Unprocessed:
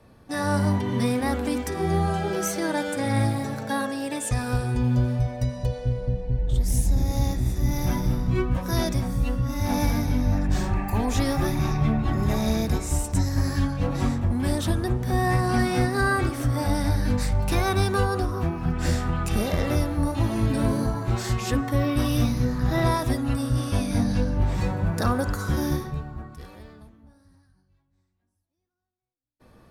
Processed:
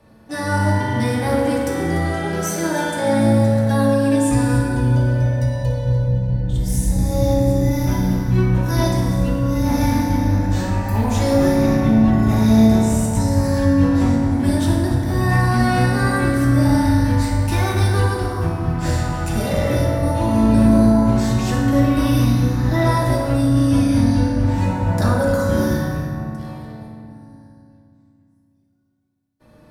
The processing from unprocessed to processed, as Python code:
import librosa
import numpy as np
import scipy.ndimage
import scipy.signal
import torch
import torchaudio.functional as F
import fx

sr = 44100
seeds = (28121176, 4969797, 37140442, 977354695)

y = x + 10.0 ** (-13.5 / 20.0) * np.pad(x, (int(293 * sr / 1000.0), 0))[:len(x)]
y = fx.rev_fdn(y, sr, rt60_s=2.1, lf_ratio=1.5, hf_ratio=0.55, size_ms=10.0, drr_db=-3.5)